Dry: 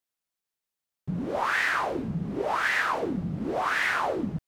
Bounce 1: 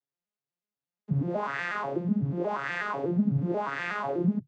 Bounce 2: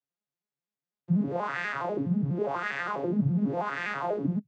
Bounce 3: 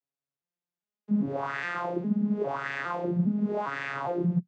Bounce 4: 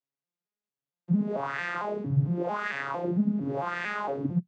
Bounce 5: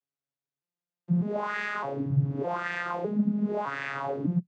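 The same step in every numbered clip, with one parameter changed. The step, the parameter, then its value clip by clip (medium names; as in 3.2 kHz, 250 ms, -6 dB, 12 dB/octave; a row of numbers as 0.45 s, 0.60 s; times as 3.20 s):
vocoder on a broken chord, a note every: 122 ms, 82 ms, 406 ms, 226 ms, 608 ms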